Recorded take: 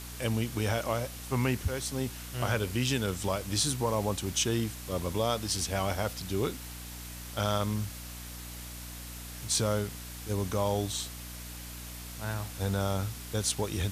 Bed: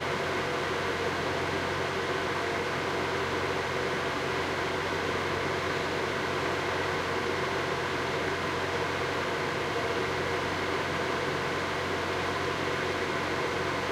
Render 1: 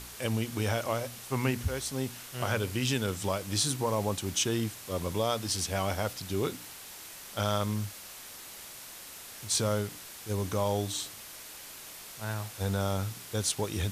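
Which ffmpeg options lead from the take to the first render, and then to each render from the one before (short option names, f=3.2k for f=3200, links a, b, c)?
-af "bandreject=f=60:t=h:w=4,bandreject=f=120:t=h:w=4,bandreject=f=180:t=h:w=4,bandreject=f=240:t=h:w=4,bandreject=f=300:t=h:w=4"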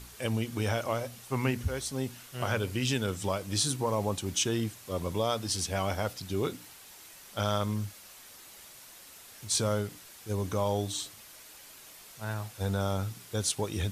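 -af "afftdn=nr=6:nf=-46"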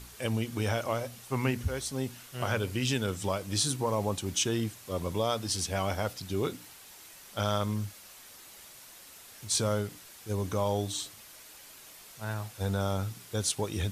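-af anull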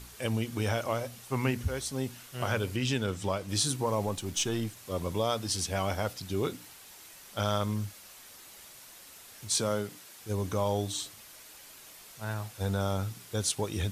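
-filter_complex "[0:a]asettb=1/sr,asplit=3[a][b][c];[a]atrim=end=2.764[d];[b]atrim=start=2.76:end=3.49,asetpts=PTS-STARTPTS,afade=t=in:d=0.004:c=qsin,afade=t=out:st=0.726:d=0.004:c=qsin,highshelf=f=8k:g=-8.5[e];[c]atrim=start=3.486[f];[d][e]acrossfade=d=0.004:c1=hsin:c2=qsin[g];[g][f]acrossfade=d=0.004:c1=qsin:c2=hsin,asettb=1/sr,asplit=3[h][i][j];[h]atrim=end=4.064[k];[i]atrim=start=4.06:end=4.77,asetpts=PTS-STARTPTS,afade=t=in:d=0.004:c=qsin,afade=t=out:st=0.706:d=0.004:c=qsin,aeval=exprs='if(lt(val(0),0),0.708*val(0),val(0))':c=same[l];[j]atrim=start=4.766[m];[k][l]acrossfade=d=0.004:c1=hsin:c2=qsin[n];[n][m]acrossfade=d=0.004:c1=qsin:c2=hsin,asettb=1/sr,asplit=3[o][p][q];[o]atrim=end=9.544[r];[p]atrim=start=9.54:end=10.19,asetpts=PTS-STARTPTS,afade=t=in:d=0.004:c=qsin,afade=t=out:st=0.646:d=0.004:c=qsin,highpass=140[s];[q]atrim=start=10.186[t];[r][s]acrossfade=d=0.004:c1=hsin:c2=qsin[u];[u][t]acrossfade=d=0.004:c1=qsin:c2=hsin"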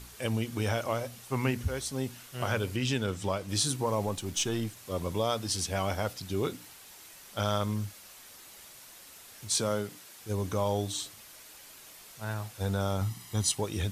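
-filter_complex "[0:a]asettb=1/sr,asplit=3[a][b][c];[a]atrim=end=13.014[d];[b]atrim=start=13.01:end=13.57,asetpts=PTS-STARTPTS,afade=t=in:d=0.004:c=qsin,afade=t=out:st=0.556:d=0.004:c=qsin,aecho=1:1:1:0.65,atrim=end_sample=24696[e];[c]atrim=start=13.566[f];[d][e]acrossfade=d=0.004:c1=hsin:c2=qsin[g];[g][f]acrossfade=d=0.004:c1=qsin:c2=hsin"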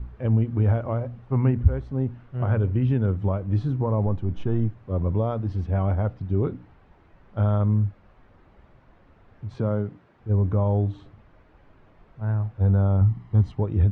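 -af "lowpass=1.5k,aemphasis=mode=reproduction:type=riaa"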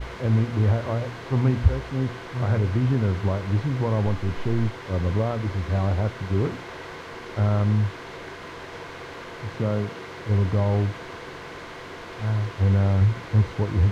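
-filter_complex "[1:a]volume=-8dB[a];[0:a][a]amix=inputs=2:normalize=0"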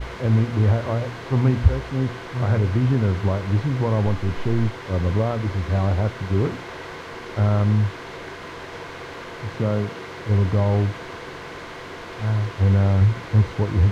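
-af "volume=2.5dB"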